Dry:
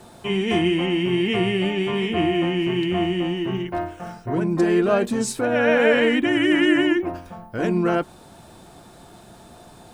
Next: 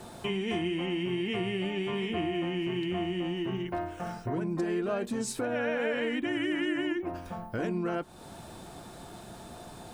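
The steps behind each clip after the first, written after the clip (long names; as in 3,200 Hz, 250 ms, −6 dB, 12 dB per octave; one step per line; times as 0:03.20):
downward compressor 3 to 1, threshold −32 dBFS, peak gain reduction 14 dB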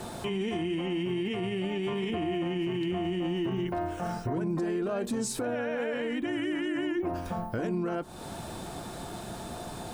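brickwall limiter −29.5 dBFS, peak gain reduction 10 dB
dynamic equaliser 2,300 Hz, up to −4 dB, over −52 dBFS, Q 0.92
level +6.5 dB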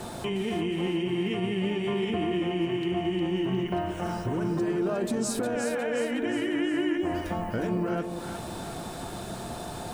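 echo with a time of its own for lows and highs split 660 Hz, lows 174 ms, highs 359 ms, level −6.5 dB
level +1.5 dB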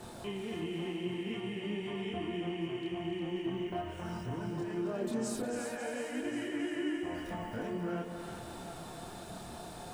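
multi-voice chorus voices 2, 0.48 Hz, delay 27 ms, depth 3.7 ms
feedback echo with a high-pass in the loop 269 ms, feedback 69%, high-pass 480 Hz, level −8 dB
level −6 dB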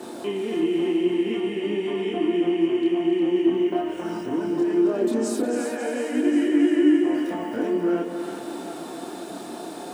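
high-pass with resonance 300 Hz, resonance Q 3.6
level +7.5 dB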